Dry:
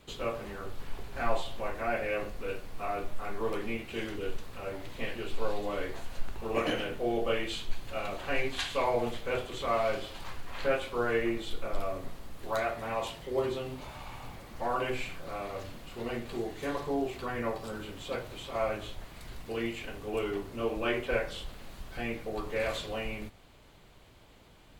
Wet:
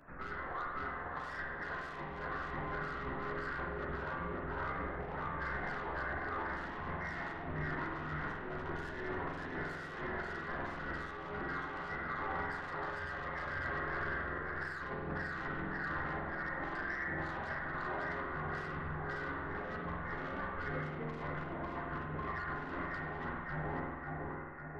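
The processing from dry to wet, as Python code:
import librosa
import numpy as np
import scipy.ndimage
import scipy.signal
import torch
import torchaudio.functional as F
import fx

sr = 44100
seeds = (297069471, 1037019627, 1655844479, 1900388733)

p1 = scipy.signal.sosfilt(scipy.signal.cheby2(4, 70, 180.0, 'highpass', fs=sr, output='sos'), x)
p2 = fx.tilt_eq(p1, sr, slope=3.5)
p3 = fx.quant_companded(p2, sr, bits=6)
p4 = p3 + fx.echo_feedback(p3, sr, ms=547, feedback_pct=55, wet_db=-4.5, dry=0)
p5 = fx.freq_invert(p4, sr, carrier_hz=2600)
p6 = fx.chorus_voices(p5, sr, voices=6, hz=0.42, base_ms=13, depth_ms=1.7, mix_pct=40)
p7 = 10.0 ** (-39.0 / 20.0) * np.tanh(p6 / 10.0 ** (-39.0 / 20.0))
p8 = fx.over_compress(p7, sr, threshold_db=-46.0, ratio=-0.5)
p9 = fx.rev_spring(p8, sr, rt60_s=1.4, pass_ms=(46,), chirp_ms=60, drr_db=0.0)
y = p9 * 10.0 ** (4.0 / 20.0)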